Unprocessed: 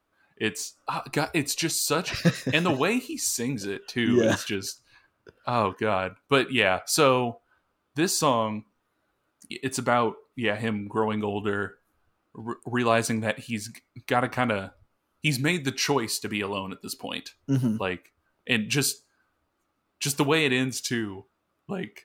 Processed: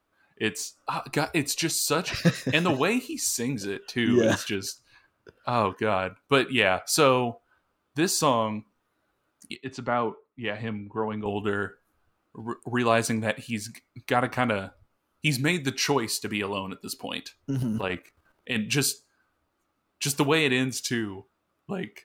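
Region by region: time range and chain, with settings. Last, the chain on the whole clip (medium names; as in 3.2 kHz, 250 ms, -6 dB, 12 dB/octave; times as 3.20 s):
9.55–11.26 s: compression 1.5:1, threshold -30 dBFS + distance through air 170 m + three bands expanded up and down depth 100%
17.50–18.56 s: level held to a coarse grid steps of 9 dB + transient shaper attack 0 dB, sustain +9 dB
whole clip: none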